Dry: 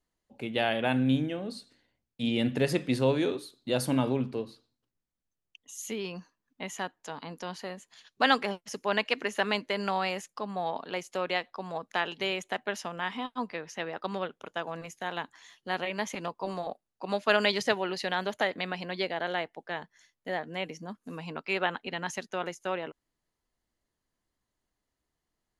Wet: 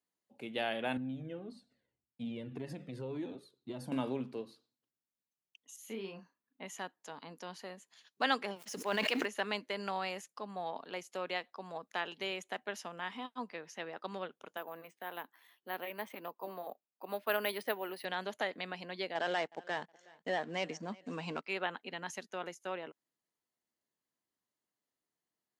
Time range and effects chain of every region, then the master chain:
0:00.97–0:03.92: spectral tilt −3 dB per octave + downward compressor, threshold −22 dBFS + flanger whose copies keep moving one way falling 1.8 Hz
0:05.76–0:06.66: parametric band 6,700 Hz −10.5 dB 1.5 octaves + double-tracking delay 36 ms −5.5 dB
0:08.56–0:09.26: mu-law and A-law mismatch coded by mu + high-pass filter 120 Hz + level that may fall only so fast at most 23 dB per second
0:14.57–0:18.05: high-pass filter 240 Hz + high-frequency loss of the air 210 metres + bad sample-rate conversion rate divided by 3×, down none, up hold
0:19.15–0:21.43: leveller curve on the samples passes 2 + linear-phase brick-wall low-pass 8,800 Hz + repeating echo 367 ms, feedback 33%, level −23.5 dB
whole clip: high-pass filter 170 Hz; high-shelf EQ 9,700 Hz +4.5 dB; level −7.5 dB

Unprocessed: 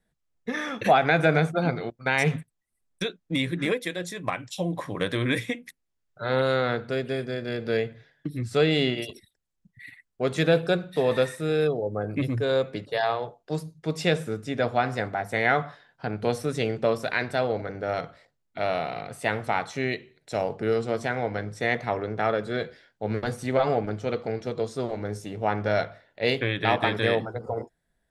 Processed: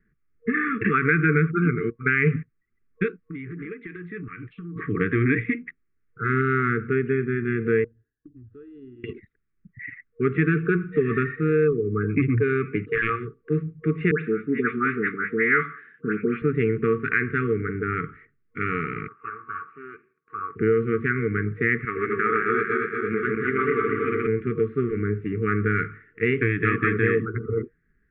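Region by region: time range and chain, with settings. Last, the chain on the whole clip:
0:03.08–0:04.76: downward compressor 20 to 1, threshold −36 dBFS + saturating transformer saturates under 830 Hz
0:07.84–0:09.04: guitar amp tone stack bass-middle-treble 10-0-1 + downward compressor 4 to 1, threshold −43 dBFS + phaser with its sweep stopped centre 590 Hz, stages 6
0:11.72–0:13.25: high-pass filter 46 Hz + wrap-around overflow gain 14 dB + parametric band 2,400 Hz +8 dB 0.33 octaves
0:14.11–0:16.42: high-pass filter 170 Hz 24 dB per octave + all-pass dispersion highs, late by 112 ms, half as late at 1,800 Hz
0:19.08–0:20.56: lower of the sound and its delayed copy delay 0.78 ms + pair of resonant band-passes 840 Hz, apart 0.75 octaves
0:21.85–0:24.27: feedback delay that plays each chunk backwards 116 ms, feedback 75%, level −1 dB + high-pass filter 540 Hz 6 dB per octave
whole clip: Butterworth low-pass 2,300 Hz 48 dB per octave; brick-wall band-stop 470–1,100 Hz; downward compressor 2 to 1, threshold −28 dBFS; level +8.5 dB

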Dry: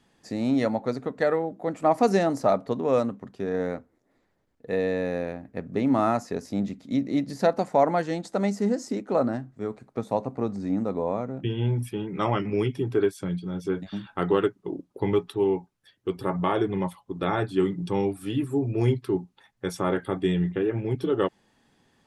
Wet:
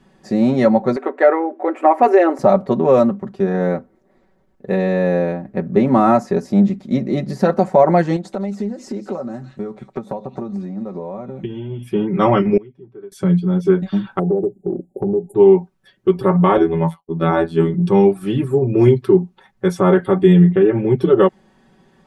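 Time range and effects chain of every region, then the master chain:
0:00.96–0:02.39: linear-phase brick-wall high-pass 250 Hz + high shelf with overshoot 3,300 Hz −10 dB, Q 1.5 + one half of a high-frequency compander encoder only
0:08.16–0:11.91: echo through a band-pass that steps 167 ms, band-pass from 3,300 Hz, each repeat 0.7 octaves, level −4.5 dB + downward compressor 4 to 1, threshold −38 dBFS + transient designer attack +5 dB, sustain −2 dB
0:12.57–0:13.12: low-pass filter 1,800 Hz 6 dB per octave + gate with flip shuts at −32 dBFS, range −26 dB
0:14.19–0:15.35: linear-phase brick-wall band-stop 860–6,700 Hz + downward compressor 3 to 1, threshold −29 dBFS
0:16.57–0:17.74: downward expander −42 dBFS + parametric band 650 Hz +6 dB 0.22 octaves + phases set to zero 82.5 Hz
whole clip: high-shelf EQ 2,000 Hz −11 dB; comb filter 5.3 ms, depth 81%; boost into a limiter +11.5 dB; level −1 dB

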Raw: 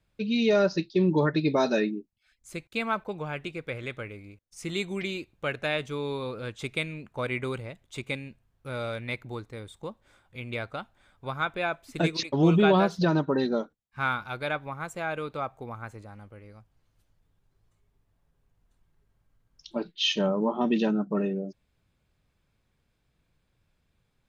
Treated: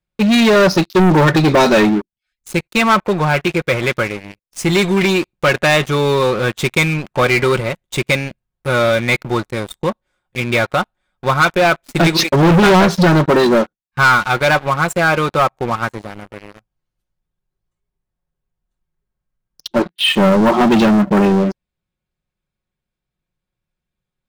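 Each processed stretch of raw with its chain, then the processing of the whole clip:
0:19.82–0:20.48: high-pass filter 40 Hz + high-frequency loss of the air 370 metres
whole clip: comb filter 5.5 ms, depth 45%; leveller curve on the samples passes 5; dynamic equaliser 1,200 Hz, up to +3 dB, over −26 dBFS, Q 0.78

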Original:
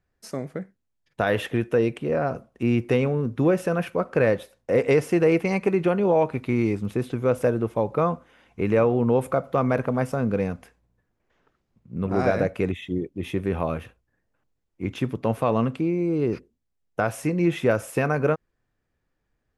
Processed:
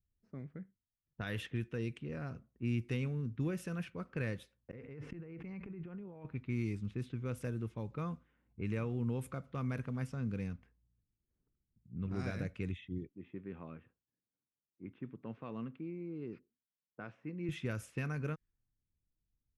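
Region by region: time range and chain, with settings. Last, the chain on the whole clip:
0:04.71–0:06.25: high-shelf EQ 3,200 Hz −6 dB + gate with flip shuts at −19 dBFS, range −28 dB + envelope flattener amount 100%
0:13.09–0:17.49: high-pass filter 230 Hz + head-to-tape spacing loss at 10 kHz 28 dB + one half of a high-frequency compander encoder only
whole clip: low-pass that shuts in the quiet parts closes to 540 Hz, open at −18.5 dBFS; guitar amp tone stack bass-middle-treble 6-0-2; level +5 dB

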